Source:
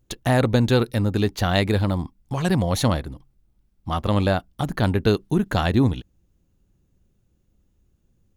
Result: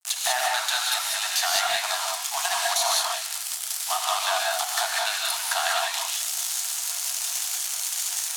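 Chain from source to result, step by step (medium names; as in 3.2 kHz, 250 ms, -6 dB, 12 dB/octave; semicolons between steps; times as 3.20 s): zero-crossing glitches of -14.5 dBFS; Chebyshev high-pass 650 Hz, order 10; gate -34 dBFS, range -37 dB; low-pass 9.2 kHz 12 dB/octave; treble shelf 2.7 kHz +3 dB; compression 4:1, threshold -27 dBFS, peak gain reduction 9 dB; in parallel at -8 dB: integer overflow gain 12.5 dB; on the sum: gated-style reverb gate 220 ms rising, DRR -2 dB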